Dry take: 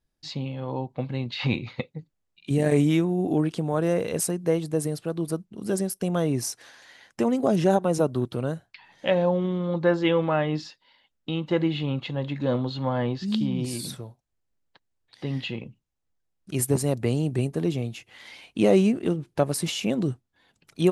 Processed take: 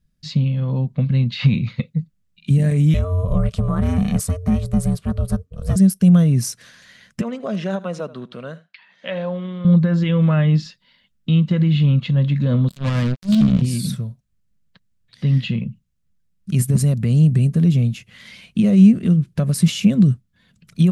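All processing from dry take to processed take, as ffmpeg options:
ffmpeg -i in.wav -filter_complex "[0:a]asettb=1/sr,asplit=3[link_01][link_02][link_03];[link_01]atrim=end=2.944[link_04];[link_02]atrim=start=2.94:end=5.76,asetpts=PTS-STARTPTS,afade=type=in:duration=0.004:curve=qsin,afade=type=out:start_time=2.816:duration=0.004:curve=qsin,equalizer=frequency=910:width_type=o:width=0.37:gain=14,aeval=exprs='val(0)*sin(2*PI*270*n/s)':channel_layout=same[link_05];[link_03]atrim=start=5.756[link_06];[link_04][link_05]acrossfade=duration=0.004:curve1=hsin:curve2=qsin[link_07];[link_07][link_06]acrossfade=duration=0.004:curve1=qsin:curve2=hsin,asettb=1/sr,asplit=3[link_08][link_09][link_10];[link_08]atrim=end=7.214[link_11];[link_09]atrim=start=7.21:end=9.65,asetpts=PTS-STARTPTS,afade=type=in:duration=0.004:curve=qsin,afade=type=out:start_time=2.436:duration=0.004:curve=qsin,highpass=520,lowpass=3800,aecho=1:1:79:0.106,atrim=end_sample=107604[link_12];[link_10]atrim=start=9.646[link_13];[link_11][link_12]acrossfade=duration=0.004:curve1=hsin:curve2=qsin[link_14];[link_14][link_13]acrossfade=duration=0.004:curve1=qsin:curve2=hsin,asettb=1/sr,asplit=3[link_15][link_16][link_17];[link_15]atrim=end=12.684[link_18];[link_16]atrim=start=12.68:end=13.62,asetpts=PTS-STARTPTS,afade=type=in:duration=0.004:curve=qsin,afade=type=out:start_time=0.936:duration=0.004:curve=qsin,equalizer=frequency=150:width=2.6:gain=-2.5,acrusher=bits=3:mix=0:aa=0.5[link_19];[link_17]atrim=start=13.616[link_20];[link_18][link_19]acrossfade=duration=0.004:curve1=hsin:curve2=qsin[link_21];[link_21][link_20]acrossfade=duration=0.004:curve1=qsin:curve2=hsin,equalizer=frequency=830:width=3.4:gain=-13.5,alimiter=limit=-18.5dB:level=0:latency=1:release=66,lowshelf=frequency=250:width_type=q:width=3:gain=8,volume=4dB" out.wav

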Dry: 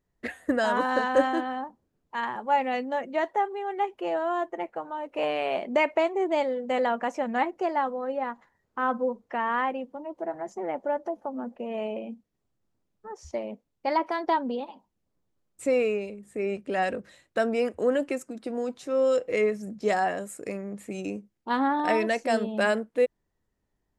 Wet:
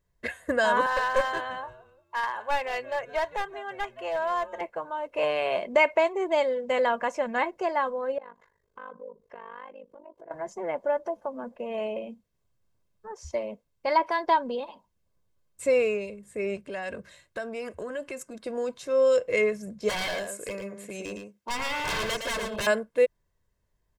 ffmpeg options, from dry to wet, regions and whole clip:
ffmpeg -i in.wav -filter_complex "[0:a]asettb=1/sr,asplit=3[link_01][link_02][link_03];[link_01]atrim=end=0.864[link_04];[link_02]atrim=start=0.86:end=4.61,asetpts=PTS-STARTPTS,afade=type=in:duration=0.004:curve=qsin,afade=type=out:start_time=3.746:duration=0.004:curve=qsin,highpass=560,asplit=4[link_05][link_06][link_07][link_08];[link_06]adelay=173,afreqshift=-140,volume=-18dB[link_09];[link_07]adelay=346,afreqshift=-280,volume=-27.1dB[link_10];[link_08]adelay=519,afreqshift=-420,volume=-36.2dB[link_11];[link_05][link_09][link_10][link_11]amix=inputs=4:normalize=0,atrim=end_sample=165375,aeval=exprs='clip(val(0),-1,0.0501)':channel_layout=same[link_12];[link_03]atrim=start=4.606[link_13];[link_04][link_12]acrossfade=duration=0.004:curve1=hsin:curve2=qsin[link_14];[link_14][link_13]acrossfade=duration=0.004:curve1=qsin:curve2=hsin,asettb=1/sr,asplit=3[link_15][link_16][link_17];[link_15]atrim=end=8.184[link_18];[link_16]atrim=start=8.18:end=10.31,asetpts=PTS-STARTPTS,afade=type=in:duration=0.004:curve=qsin,afade=type=out:start_time=2.126:duration=0.004:curve=qsin,equalizer=frequency=430:width_type=o:width=0.35:gain=13,acompressor=threshold=-46dB:ratio=2.5:attack=3.2:release=140:knee=1:detection=peak,tremolo=f=50:d=0.919[link_19];[link_17]atrim=start=10.306[link_20];[link_18][link_19]acrossfade=duration=0.004:curve1=hsin:curve2=qsin[link_21];[link_21][link_20]acrossfade=duration=0.004:curve1=qsin:curve2=hsin,asettb=1/sr,asplit=3[link_22][link_23][link_24];[link_22]atrim=end=16.564[link_25];[link_23]atrim=start=16.56:end=18.34,asetpts=PTS-STARTPTS,afade=type=in:duration=0.004:curve=qsin,afade=type=out:start_time=1.776:duration=0.004:curve=qsin,bandreject=frequency=500:width=10,acompressor=threshold=-32dB:ratio=4:attack=3.2:release=140:knee=1:detection=peak[link_26];[link_24]atrim=start=18.336[link_27];[link_25][link_26]acrossfade=duration=0.004:curve1=hsin:curve2=qsin[link_28];[link_28][link_27]acrossfade=duration=0.004:curve1=qsin:curve2=hsin,asettb=1/sr,asplit=3[link_29][link_30][link_31];[link_29]atrim=end=19.894[link_32];[link_30]atrim=start=19.89:end=22.67,asetpts=PTS-STARTPTS,afade=type=in:duration=0.004:curve=qsin,afade=type=out:start_time=2.776:duration=0.004:curve=qsin,highpass=frequency=270:poles=1,aeval=exprs='0.0447*(abs(mod(val(0)/0.0447+3,4)-2)-1)':channel_layout=same,aecho=1:1:113:0.501,atrim=end_sample=122598[link_33];[link_31]atrim=start=22.666[link_34];[link_32][link_33]acrossfade=duration=0.004:curve1=hsin:curve2=qsin[link_35];[link_35][link_34]acrossfade=duration=0.004:curve1=qsin:curve2=hsin,equalizer=frequency=420:width=1.2:gain=-4.5,aecho=1:1:1.9:0.52,volume=2dB" out.wav

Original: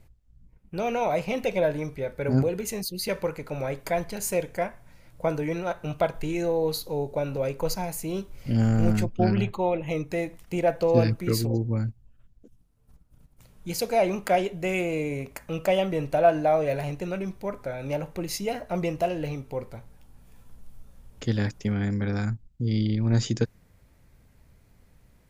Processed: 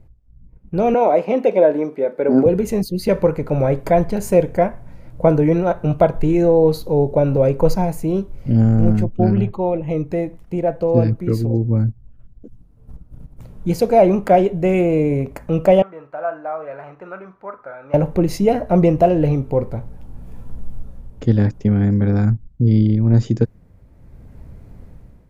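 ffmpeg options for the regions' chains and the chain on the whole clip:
ffmpeg -i in.wav -filter_complex "[0:a]asettb=1/sr,asplit=3[link_01][link_02][link_03];[link_01]atrim=end=0.944[link_04];[link_02]atrim=start=0.94:end=2.46,asetpts=PTS-STARTPTS,afade=type=in:duration=0.004:curve=qsin,afade=type=out:start_time=1.516:duration=0.004:curve=qsin,highpass=frequency=250:width=0.5412,highpass=frequency=250:width=1.3066,highshelf=frequency=4800:gain=-8[link_05];[link_03]atrim=start=2.456[link_06];[link_04][link_05]acrossfade=duration=0.004:curve1=hsin:curve2=qsin[link_07];[link_07][link_06]acrossfade=duration=0.004:curve1=qsin:curve2=hsin,asettb=1/sr,asplit=3[link_08][link_09][link_10];[link_08]atrim=end=15.824[link_11];[link_09]atrim=start=15.82:end=17.94,asetpts=PTS-STARTPTS,afade=type=in:duration=0.004:curve=qsin,afade=type=out:start_time=2.116:duration=0.004:curve=qsin,bandpass=frequency=1300:width_type=q:width=4,asplit=2[link_12][link_13];[link_13]adelay=43,volume=-12.5dB[link_14];[link_12][link_14]amix=inputs=2:normalize=0,atrim=end_sample=93492[link_15];[link_10]atrim=start=17.936[link_16];[link_11][link_15]acrossfade=duration=0.004:curve1=hsin:curve2=qsin[link_17];[link_17][link_16]acrossfade=duration=0.004:curve1=qsin:curve2=hsin,tiltshelf=frequency=1300:gain=9,dynaudnorm=framelen=460:gausssize=3:maxgain=11.5dB,volume=-1dB" out.wav

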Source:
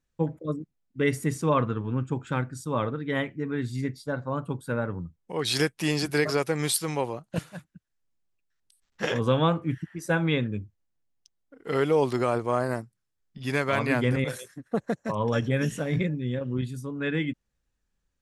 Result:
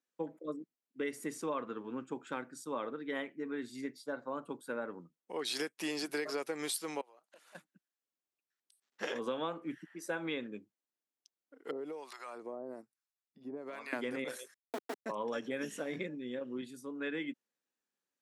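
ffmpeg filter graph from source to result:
ffmpeg -i in.wav -filter_complex "[0:a]asettb=1/sr,asplit=3[link_01][link_02][link_03];[link_01]atrim=end=7.014[link_04];[link_02]atrim=start=7.01:end=7.55,asetpts=PTS-STARTPTS,afade=type=in:duration=0.004:curve=qsin,afade=type=out:start_time=0.536:duration=0.004:curve=qsin,highpass=570,acompressor=threshold=-49dB:ratio=16:attack=3.2:release=140:knee=1:detection=peak[link_05];[link_03]atrim=start=7.546[link_06];[link_04][link_05]acrossfade=duration=0.004:curve1=hsin:curve2=qsin[link_07];[link_07][link_06]acrossfade=duration=0.004:curve1=qsin:curve2=hsin,asettb=1/sr,asplit=3[link_08][link_09][link_10];[link_08]atrim=end=11.714[link_11];[link_09]atrim=start=11.71:end=13.93,asetpts=PTS-STARTPTS,afade=type=in:duration=0.004:curve=qsin,afade=type=out:start_time=2.216:duration=0.004:curve=qsin,bandreject=frequency=3100:width=10,acompressor=threshold=-26dB:ratio=6:attack=3.2:release=140:knee=1:detection=peak,acrossover=split=770[link_12][link_13];[link_12]aeval=exprs='val(0)*(1-1/2+1/2*cos(2*PI*1.1*n/s))':channel_layout=same[link_14];[link_13]aeval=exprs='val(0)*(1-1/2-1/2*cos(2*PI*1.1*n/s))':channel_layout=same[link_15];[link_14][link_15]amix=inputs=2:normalize=0[link_16];[link_10]atrim=start=13.926[link_17];[link_11][link_16]acrossfade=duration=0.004:curve1=hsin:curve2=qsin[link_18];[link_18][link_17]acrossfade=duration=0.004:curve1=qsin:curve2=hsin,asettb=1/sr,asplit=3[link_19][link_20][link_21];[link_19]atrim=end=14.544[link_22];[link_20]atrim=start=14.54:end=15.06,asetpts=PTS-STARTPTS,afade=type=in:duration=0.004:curve=qsin,afade=type=out:start_time=0.516:duration=0.004:curve=qsin,bandreject=frequency=45.89:width_type=h:width=4,bandreject=frequency=91.78:width_type=h:width=4,bandreject=frequency=137.67:width_type=h:width=4,bandreject=frequency=183.56:width_type=h:width=4,bandreject=frequency=229.45:width_type=h:width=4,bandreject=frequency=275.34:width_type=h:width=4,bandreject=frequency=321.23:width_type=h:width=4,bandreject=frequency=367.12:width_type=h:width=4,bandreject=frequency=413.01:width_type=h:width=4,aeval=exprs='val(0)*sin(2*PI*210*n/s)':channel_layout=same,aeval=exprs='val(0)*gte(abs(val(0)),0.0299)':channel_layout=same[link_23];[link_21]atrim=start=15.056[link_24];[link_22][link_23]acrossfade=duration=0.004:curve1=hsin:curve2=qsin[link_25];[link_25][link_24]acrossfade=duration=0.004:curve1=qsin:curve2=hsin,highpass=frequency=250:width=0.5412,highpass=frequency=250:width=1.3066,acompressor=threshold=-27dB:ratio=4,volume=-6.5dB" out.wav

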